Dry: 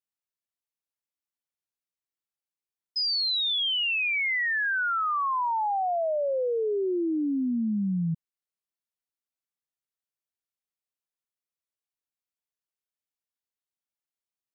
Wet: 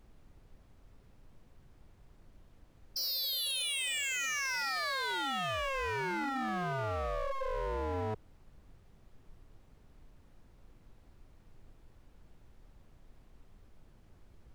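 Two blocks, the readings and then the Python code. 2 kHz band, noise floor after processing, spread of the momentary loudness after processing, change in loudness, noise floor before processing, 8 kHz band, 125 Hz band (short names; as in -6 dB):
-8.0 dB, -62 dBFS, 5 LU, -8.0 dB, under -85 dBFS, n/a, -5.5 dB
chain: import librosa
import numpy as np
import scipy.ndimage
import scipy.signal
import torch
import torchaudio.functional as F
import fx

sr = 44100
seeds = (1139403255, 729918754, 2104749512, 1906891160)

y = x * np.sin(2.0 * np.pi * 270.0 * np.arange(len(x)) / sr)
y = fx.dmg_noise_colour(y, sr, seeds[0], colour='brown', level_db=-56.0)
y = 10.0 ** (-29.5 / 20.0) * (np.abs((y / 10.0 ** (-29.5 / 20.0) + 3.0) % 4.0 - 2.0) - 1.0)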